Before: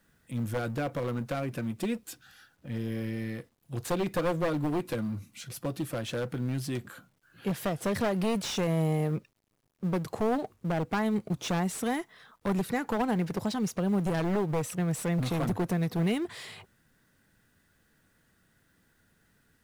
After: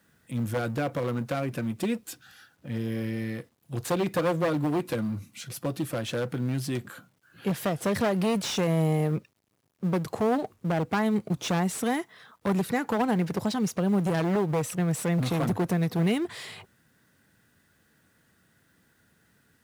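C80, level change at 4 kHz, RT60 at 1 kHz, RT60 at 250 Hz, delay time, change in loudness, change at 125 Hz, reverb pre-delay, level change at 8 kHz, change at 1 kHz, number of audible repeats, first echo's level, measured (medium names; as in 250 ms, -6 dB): no reverb, +3.0 dB, no reverb, no reverb, no echo, +3.0 dB, +3.0 dB, no reverb, +3.0 dB, +3.0 dB, no echo, no echo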